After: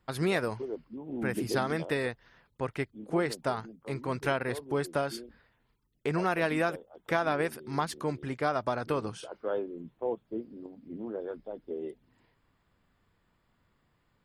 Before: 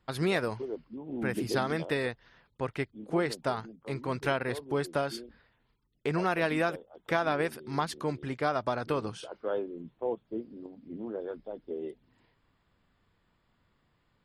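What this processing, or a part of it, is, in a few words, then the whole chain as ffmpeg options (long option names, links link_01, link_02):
exciter from parts: -filter_complex "[0:a]asplit=2[link_01][link_02];[link_02]highpass=3800,asoftclip=type=tanh:threshold=-35.5dB,highpass=2600,volume=-7.5dB[link_03];[link_01][link_03]amix=inputs=2:normalize=0"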